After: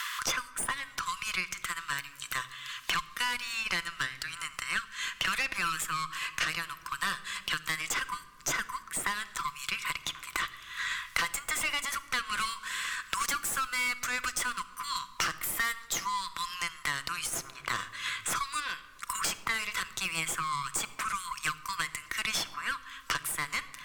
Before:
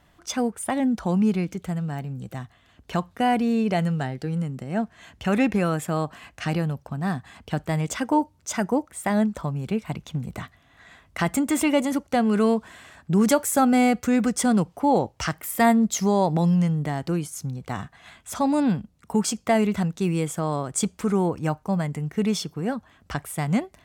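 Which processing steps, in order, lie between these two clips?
stylus tracing distortion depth 0.022 ms
linear-phase brick-wall high-pass 980 Hz
tube saturation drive 29 dB, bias 0.6
rectangular room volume 3,800 cubic metres, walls furnished, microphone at 0.77 metres
multiband upward and downward compressor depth 100%
level +6 dB

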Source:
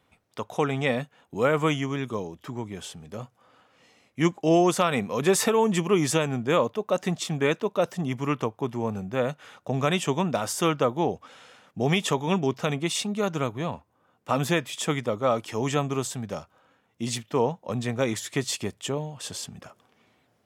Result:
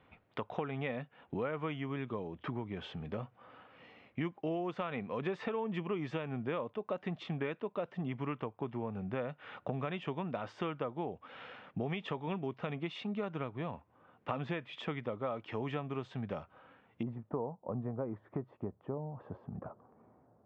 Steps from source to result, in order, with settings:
downward compressor 5 to 1, threshold −38 dBFS, peak gain reduction 20 dB
low-pass filter 3,000 Hz 24 dB per octave, from 0:17.03 1,100 Hz
level +2.5 dB

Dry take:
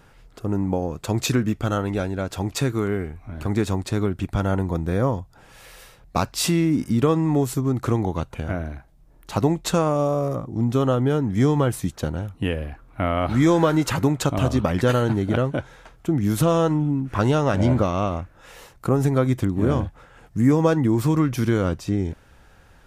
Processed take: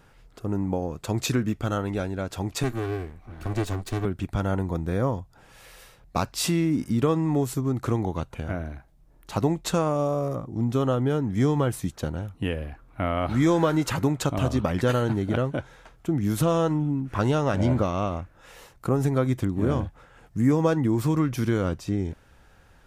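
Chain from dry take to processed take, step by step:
0:02.63–0:04.05: lower of the sound and its delayed copy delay 2.6 ms
level −3.5 dB

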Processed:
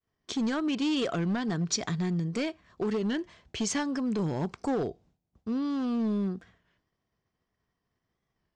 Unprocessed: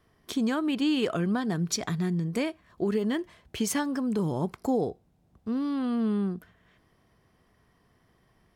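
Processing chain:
gain into a clipping stage and back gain 23.5 dB
Butterworth low-pass 7,200 Hz 36 dB per octave
high-shelf EQ 4,400 Hz +6 dB
downward expander −54 dBFS
wow of a warped record 33 1/3 rpm, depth 100 cents
level −1 dB

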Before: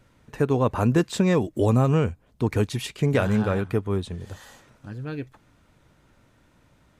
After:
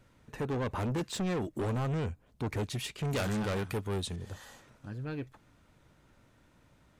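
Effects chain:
soft clipping −25 dBFS, distortion −7 dB
0:03.05–0:04.16: high-shelf EQ 3,000 Hz +11.5 dB
level −4 dB

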